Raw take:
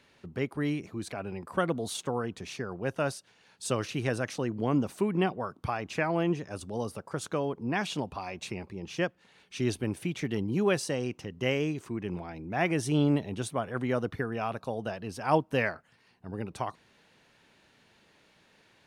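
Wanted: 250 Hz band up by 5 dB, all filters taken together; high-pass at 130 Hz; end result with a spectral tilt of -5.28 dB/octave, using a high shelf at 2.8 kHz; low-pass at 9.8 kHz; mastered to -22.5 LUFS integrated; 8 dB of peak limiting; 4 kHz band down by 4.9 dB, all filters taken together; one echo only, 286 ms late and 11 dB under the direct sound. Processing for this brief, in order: high-pass 130 Hz; low-pass 9.8 kHz; peaking EQ 250 Hz +7 dB; treble shelf 2.8 kHz -4 dB; peaking EQ 4 kHz -3.5 dB; peak limiter -17.5 dBFS; delay 286 ms -11 dB; trim +8 dB

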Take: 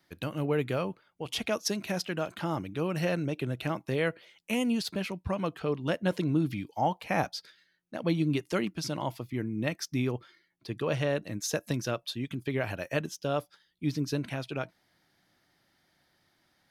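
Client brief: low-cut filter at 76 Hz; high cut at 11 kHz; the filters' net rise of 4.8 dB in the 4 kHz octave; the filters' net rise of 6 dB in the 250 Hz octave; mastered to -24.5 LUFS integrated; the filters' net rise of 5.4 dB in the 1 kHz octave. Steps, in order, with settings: high-pass 76 Hz; low-pass 11 kHz; peaking EQ 250 Hz +7.5 dB; peaking EQ 1 kHz +6.5 dB; peaking EQ 4 kHz +6 dB; trim +3 dB

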